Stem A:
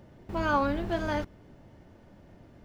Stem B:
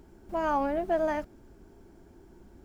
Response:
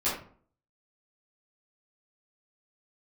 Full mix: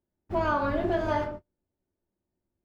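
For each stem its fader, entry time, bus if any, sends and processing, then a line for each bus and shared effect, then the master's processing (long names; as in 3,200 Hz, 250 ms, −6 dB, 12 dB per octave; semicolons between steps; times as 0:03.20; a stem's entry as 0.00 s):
−0.5 dB, 0.00 s, send −8.5 dB, high-shelf EQ 3,900 Hz −7 dB
+0.5 dB, 0.00 s, polarity flipped, send −10.5 dB, low-pass filter 2,000 Hz 6 dB per octave; brickwall limiter −28 dBFS, peak gain reduction 10.5 dB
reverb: on, RT60 0.50 s, pre-delay 9 ms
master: noise gate −36 dBFS, range −38 dB; downward compressor, threshold −22 dBFS, peak gain reduction 5.5 dB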